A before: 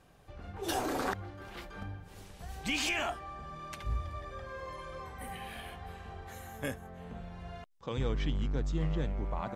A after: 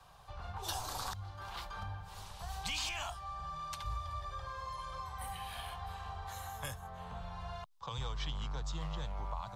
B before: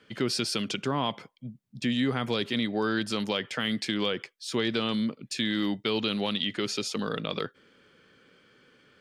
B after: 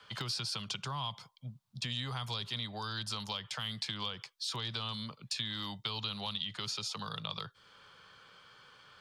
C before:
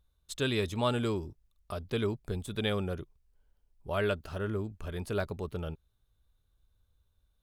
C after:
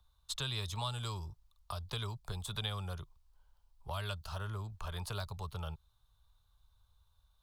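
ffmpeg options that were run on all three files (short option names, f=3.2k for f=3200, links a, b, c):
-filter_complex "[0:a]equalizer=f=250:t=o:w=1:g=-10,equalizer=f=500:t=o:w=1:g=-3,equalizer=f=1k:t=o:w=1:g=11,equalizer=f=2k:t=o:w=1:g=-6,equalizer=f=4k:t=o:w=1:g=6,acrossover=split=170|3600[a][b][c];[a]acompressor=threshold=-41dB:ratio=4[d];[b]acompressor=threshold=-44dB:ratio=4[e];[c]acompressor=threshold=-42dB:ratio=4[f];[d][e][f]amix=inputs=3:normalize=0,acrossover=split=250|430|2500[g][h][i][j];[h]acrusher=bits=6:mix=0:aa=0.000001[k];[g][k][i][j]amix=inputs=4:normalize=0,volume=2dB"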